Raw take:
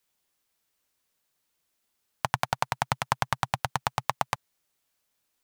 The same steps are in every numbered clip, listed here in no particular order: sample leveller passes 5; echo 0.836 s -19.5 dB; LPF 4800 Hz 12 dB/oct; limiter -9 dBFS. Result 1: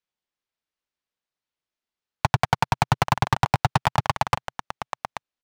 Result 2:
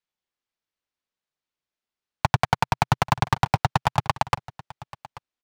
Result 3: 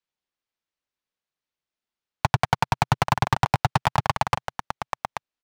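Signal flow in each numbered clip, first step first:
LPF > limiter > echo > sample leveller; LPF > sample leveller > limiter > echo; echo > limiter > LPF > sample leveller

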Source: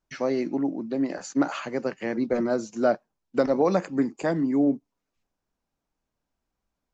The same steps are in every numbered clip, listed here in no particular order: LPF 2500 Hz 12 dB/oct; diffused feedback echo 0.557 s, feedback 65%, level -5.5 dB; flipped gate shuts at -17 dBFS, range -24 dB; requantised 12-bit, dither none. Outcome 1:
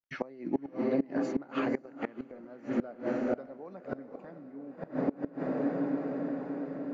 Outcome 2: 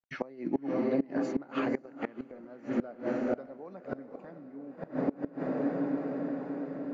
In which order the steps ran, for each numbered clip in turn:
requantised > diffused feedback echo > flipped gate > LPF; diffused feedback echo > requantised > LPF > flipped gate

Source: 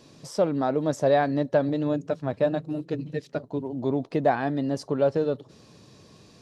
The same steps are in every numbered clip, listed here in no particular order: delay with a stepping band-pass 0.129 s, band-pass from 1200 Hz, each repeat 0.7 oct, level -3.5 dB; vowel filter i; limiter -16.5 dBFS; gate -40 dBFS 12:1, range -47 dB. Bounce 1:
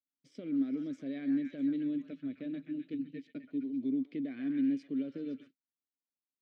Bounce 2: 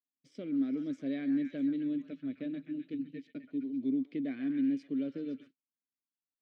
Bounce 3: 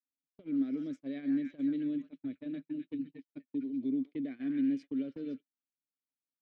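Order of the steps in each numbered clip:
delay with a stepping band-pass > gate > limiter > vowel filter; delay with a stepping band-pass > gate > vowel filter > limiter; delay with a stepping band-pass > limiter > vowel filter > gate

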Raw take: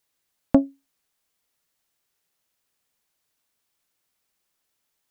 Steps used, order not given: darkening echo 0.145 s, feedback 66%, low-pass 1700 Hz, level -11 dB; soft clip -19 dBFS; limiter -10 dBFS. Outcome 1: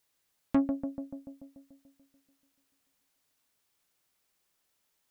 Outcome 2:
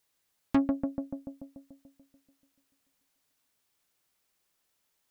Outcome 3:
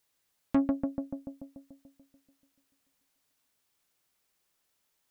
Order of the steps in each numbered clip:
limiter > darkening echo > soft clip; darkening echo > soft clip > limiter; darkening echo > limiter > soft clip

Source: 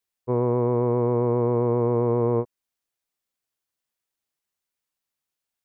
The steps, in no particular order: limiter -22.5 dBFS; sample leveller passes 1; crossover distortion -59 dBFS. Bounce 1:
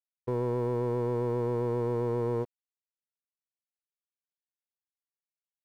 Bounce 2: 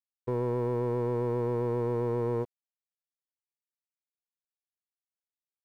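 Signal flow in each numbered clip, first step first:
limiter > crossover distortion > sample leveller; limiter > sample leveller > crossover distortion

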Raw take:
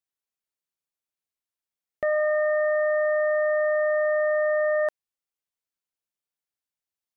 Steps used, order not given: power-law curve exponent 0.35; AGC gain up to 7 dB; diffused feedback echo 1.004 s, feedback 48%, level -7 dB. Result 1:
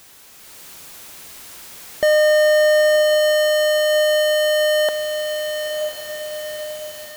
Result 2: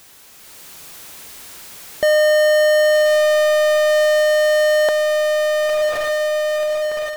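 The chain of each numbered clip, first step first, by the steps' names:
power-law curve > AGC > diffused feedback echo; diffused feedback echo > power-law curve > AGC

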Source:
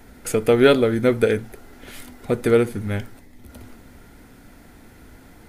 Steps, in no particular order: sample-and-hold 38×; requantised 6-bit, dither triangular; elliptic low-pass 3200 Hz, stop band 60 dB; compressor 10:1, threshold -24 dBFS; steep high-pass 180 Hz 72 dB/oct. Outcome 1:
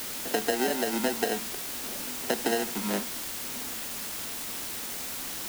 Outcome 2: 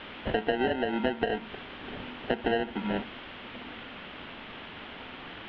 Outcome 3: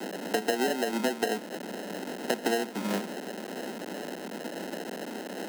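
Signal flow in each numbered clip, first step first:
elliptic low-pass > sample-and-hold > steep high-pass > compressor > requantised; steep high-pass > sample-and-hold > requantised > elliptic low-pass > compressor; elliptic low-pass > requantised > sample-and-hold > steep high-pass > compressor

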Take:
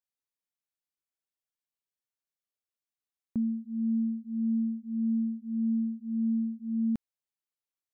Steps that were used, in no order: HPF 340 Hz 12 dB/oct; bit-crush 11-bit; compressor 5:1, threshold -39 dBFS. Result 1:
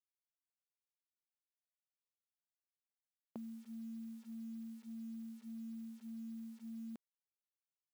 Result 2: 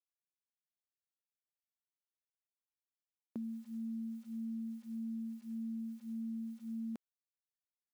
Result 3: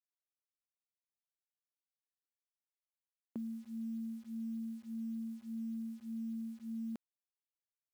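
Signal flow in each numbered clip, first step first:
compressor > bit-crush > HPF; bit-crush > HPF > compressor; HPF > compressor > bit-crush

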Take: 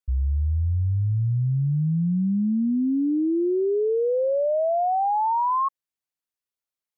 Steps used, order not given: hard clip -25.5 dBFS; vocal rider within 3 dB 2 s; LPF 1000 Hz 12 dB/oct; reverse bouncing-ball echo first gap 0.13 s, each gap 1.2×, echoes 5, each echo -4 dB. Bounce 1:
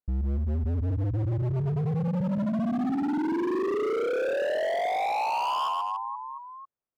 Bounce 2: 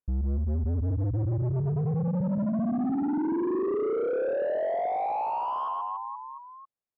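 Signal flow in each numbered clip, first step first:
reverse bouncing-ball echo > vocal rider > LPF > hard clip; vocal rider > reverse bouncing-ball echo > hard clip > LPF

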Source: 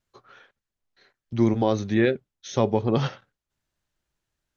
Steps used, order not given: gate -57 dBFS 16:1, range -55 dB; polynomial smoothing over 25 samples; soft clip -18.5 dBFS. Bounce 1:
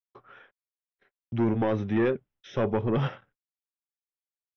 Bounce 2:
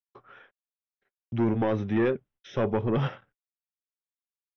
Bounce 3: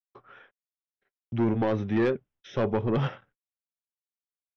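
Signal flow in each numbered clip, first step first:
gate > soft clip > polynomial smoothing; soft clip > polynomial smoothing > gate; polynomial smoothing > gate > soft clip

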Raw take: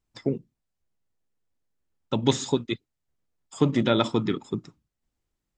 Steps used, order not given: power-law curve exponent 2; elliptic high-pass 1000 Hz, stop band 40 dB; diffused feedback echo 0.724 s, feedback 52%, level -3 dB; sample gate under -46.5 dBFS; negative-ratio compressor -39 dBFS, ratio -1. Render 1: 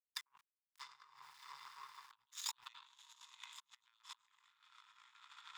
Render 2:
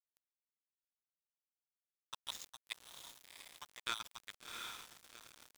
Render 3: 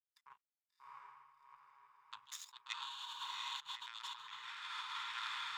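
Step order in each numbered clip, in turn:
diffused feedback echo > sample gate > negative-ratio compressor > power-law curve > elliptic high-pass; elliptic high-pass > power-law curve > negative-ratio compressor > diffused feedback echo > sample gate; sample gate > power-law curve > diffused feedback echo > negative-ratio compressor > elliptic high-pass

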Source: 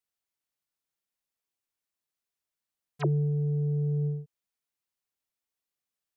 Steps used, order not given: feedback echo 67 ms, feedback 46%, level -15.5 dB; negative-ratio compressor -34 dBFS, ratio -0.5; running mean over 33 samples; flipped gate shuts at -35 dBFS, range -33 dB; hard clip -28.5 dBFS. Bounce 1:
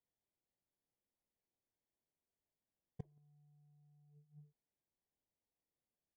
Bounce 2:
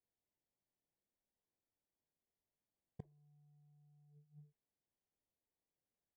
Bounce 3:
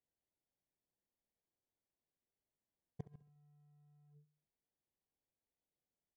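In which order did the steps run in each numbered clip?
hard clip > feedback echo > negative-ratio compressor > running mean > flipped gate; hard clip > feedback echo > negative-ratio compressor > flipped gate > running mean; running mean > hard clip > negative-ratio compressor > flipped gate > feedback echo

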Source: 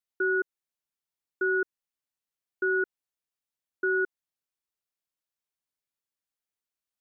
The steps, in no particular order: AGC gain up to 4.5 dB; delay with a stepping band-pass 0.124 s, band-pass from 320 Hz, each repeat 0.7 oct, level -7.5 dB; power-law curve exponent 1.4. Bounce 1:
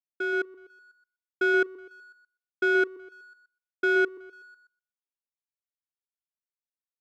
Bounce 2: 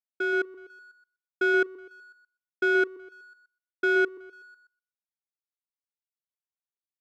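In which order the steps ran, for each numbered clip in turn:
AGC > delay with a stepping band-pass > power-law curve; delay with a stepping band-pass > power-law curve > AGC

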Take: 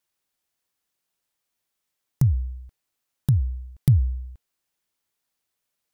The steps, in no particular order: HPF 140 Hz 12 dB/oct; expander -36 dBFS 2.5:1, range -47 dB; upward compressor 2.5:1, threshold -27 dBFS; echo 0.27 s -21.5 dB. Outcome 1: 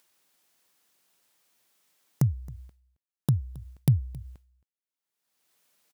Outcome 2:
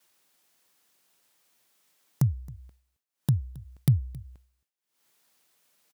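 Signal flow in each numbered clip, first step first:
expander > HPF > upward compressor > echo; echo > upward compressor > expander > HPF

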